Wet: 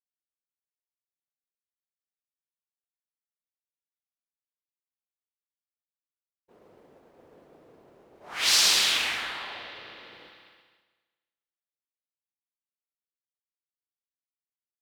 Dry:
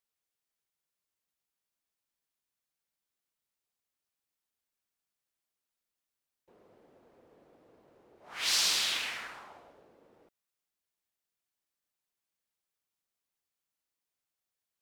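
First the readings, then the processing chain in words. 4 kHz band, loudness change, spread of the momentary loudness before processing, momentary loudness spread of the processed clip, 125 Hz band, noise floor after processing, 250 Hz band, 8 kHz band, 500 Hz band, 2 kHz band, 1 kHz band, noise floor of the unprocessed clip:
+7.5 dB, +6.5 dB, 19 LU, 22 LU, can't be measured, below −85 dBFS, +8.0 dB, +7.0 dB, +8.0 dB, +8.0 dB, +8.0 dB, below −85 dBFS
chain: spring reverb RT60 3.6 s, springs 33/56 ms, chirp 40 ms, DRR 7 dB
downward expander −59 dBFS
level +7 dB

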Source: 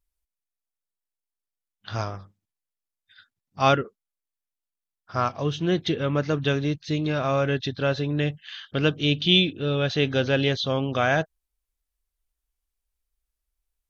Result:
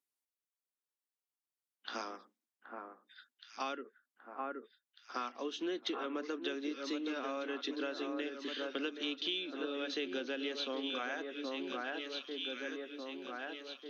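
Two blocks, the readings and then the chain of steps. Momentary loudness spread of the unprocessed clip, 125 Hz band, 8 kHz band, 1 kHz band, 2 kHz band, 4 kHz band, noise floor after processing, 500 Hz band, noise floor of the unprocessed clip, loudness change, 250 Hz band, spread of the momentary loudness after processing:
11 LU, below −40 dB, can't be measured, −13.5 dB, −12.5 dB, −12.5 dB, below −85 dBFS, −14.0 dB, below −85 dBFS, −15.5 dB, −13.0 dB, 12 LU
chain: Butterworth high-pass 230 Hz 72 dB per octave
notch filter 630 Hz, Q 12
delay that swaps between a low-pass and a high-pass 773 ms, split 1,800 Hz, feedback 70%, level −7.5 dB
downward compressor 12 to 1, threshold −29 dBFS, peak gain reduction 15 dB
dynamic equaliser 700 Hz, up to −4 dB, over −45 dBFS, Q 1.4
level −4.5 dB

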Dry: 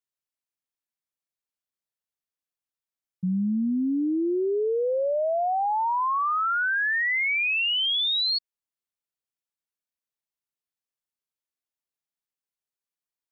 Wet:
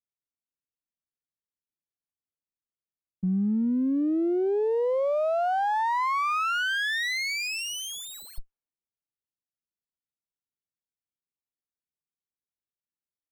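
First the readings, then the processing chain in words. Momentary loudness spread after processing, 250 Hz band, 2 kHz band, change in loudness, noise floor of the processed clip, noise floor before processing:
8 LU, 0.0 dB, −4.0 dB, −2.0 dB, below −85 dBFS, below −85 dBFS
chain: low-pass that shuts in the quiet parts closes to 360 Hz
pitch vibrato 2 Hz 9.8 cents
windowed peak hold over 9 samples

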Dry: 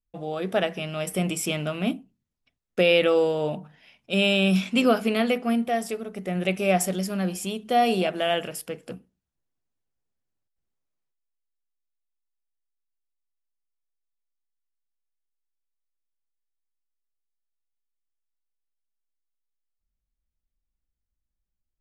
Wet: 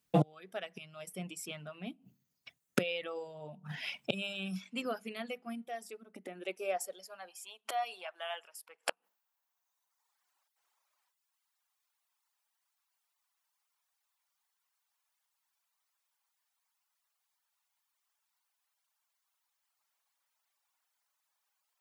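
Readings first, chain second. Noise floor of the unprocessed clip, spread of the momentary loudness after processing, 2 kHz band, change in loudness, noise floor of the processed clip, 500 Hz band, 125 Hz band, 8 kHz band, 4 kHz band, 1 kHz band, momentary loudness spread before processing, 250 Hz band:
−83 dBFS, 13 LU, −13.0 dB, −15.0 dB, −84 dBFS, −15.5 dB, −10.0 dB, −12.5 dB, −13.5 dB, −13.0 dB, 14 LU, −15.5 dB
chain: gate with flip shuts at −27 dBFS, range −29 dB
low-shelf EQ 390 Hz −9.5 dB
reverb reduction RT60 1.5 s
high-pass filter sweep 140 Hz → 900 Hz, 0:05.60–0:07.42
level +15.5 dB

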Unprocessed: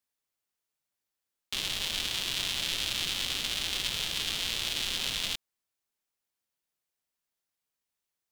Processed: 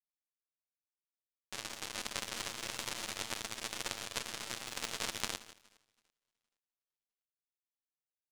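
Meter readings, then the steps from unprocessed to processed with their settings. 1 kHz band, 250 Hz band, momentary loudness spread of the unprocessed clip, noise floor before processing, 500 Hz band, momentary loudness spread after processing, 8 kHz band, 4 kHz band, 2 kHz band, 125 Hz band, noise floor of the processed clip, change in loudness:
0.0 dB, −3.5 dB, 3 LU, below −85 dBFS, −0.5 dB, 5 LU, −5.0 dB, −12.5 dB, −7.0 dB, −7.5 dB, below −85 dBFS, −9.5 dB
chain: lower of the sound and its delayed copy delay 8.9 ms
reverse bouncing-ball delay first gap 170 ms, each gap 1.4×, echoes 5
power curve on the samples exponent 3
level +3.5 dB

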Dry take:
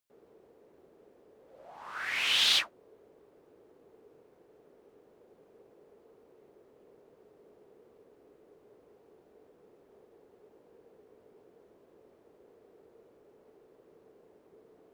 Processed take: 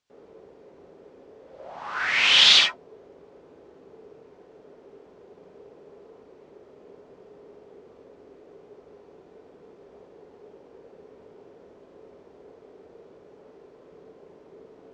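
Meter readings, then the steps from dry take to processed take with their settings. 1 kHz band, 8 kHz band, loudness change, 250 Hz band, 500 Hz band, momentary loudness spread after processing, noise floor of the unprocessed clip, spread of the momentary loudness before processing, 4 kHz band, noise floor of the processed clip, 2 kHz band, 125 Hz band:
+10.5 dB, +7.0 dB, +10.0 dB, +10.0 dB, +10.5 dB, 16 LU, −63 dBFS, 17 LU, +10.5 dB, −53 dBFS, +10.0 dB, +10.5 dB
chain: low-pass filter 6,600 Hz 24 dB per octave
reverb whose tail is shaped and stops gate 90 ms rising, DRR 3 dB
level +8.5 dB

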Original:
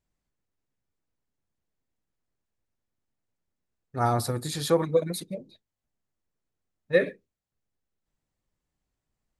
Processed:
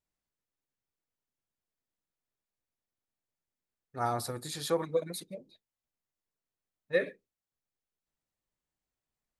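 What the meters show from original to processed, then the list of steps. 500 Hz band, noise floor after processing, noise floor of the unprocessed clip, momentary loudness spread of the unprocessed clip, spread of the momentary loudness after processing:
−7.0 dB, below −85 dBFS, below −85 dBFS, 15 LU, 15 LU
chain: low-shelf EQ 270 Hz −8 dB
level −5 dB

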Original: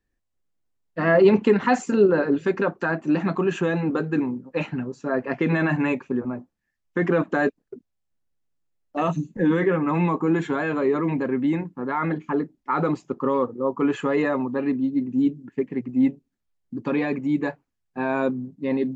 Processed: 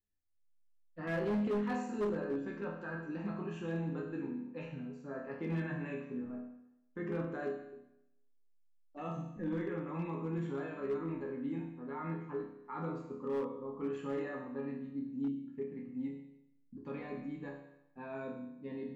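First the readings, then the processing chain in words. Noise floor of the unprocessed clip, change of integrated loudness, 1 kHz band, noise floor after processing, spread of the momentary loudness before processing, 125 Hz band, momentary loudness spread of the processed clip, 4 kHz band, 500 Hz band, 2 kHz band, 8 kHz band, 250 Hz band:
−78 dBFS, −16.0 dB, −17.5 dB, −68 dBFS, 9 LU, −13.0 dB, 10 LU, below −15 dB, −16.0 dB, −18.0 dB, can't be measured, −16.0 dB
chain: low-shelf EQ 230 Hz +9 dB
resonators tuned to a chord C#2 minor, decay 0.83 s
hard clipping −27 dBFS, distortion −14 dB
level −2.5 dB

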